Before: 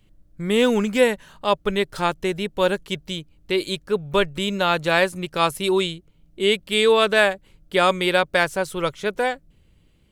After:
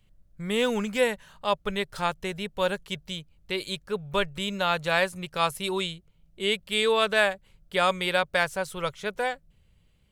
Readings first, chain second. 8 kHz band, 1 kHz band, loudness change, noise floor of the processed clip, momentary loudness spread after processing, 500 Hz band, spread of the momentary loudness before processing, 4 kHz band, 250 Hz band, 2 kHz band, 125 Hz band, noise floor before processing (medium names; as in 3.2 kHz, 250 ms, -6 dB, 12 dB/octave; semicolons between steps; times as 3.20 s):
-4.5 dB, -5.0 dB, -6.0 dB, -63 dBFS, 10 LU, -7.0 dB, 10 LU, -4.5 dB, -8.0 dB, -4.5 dB, -6.0 dB, -58 dBFS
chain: peaking EQ 310 Hz -10.5 dB 0.66 oct; trim -4.5 dB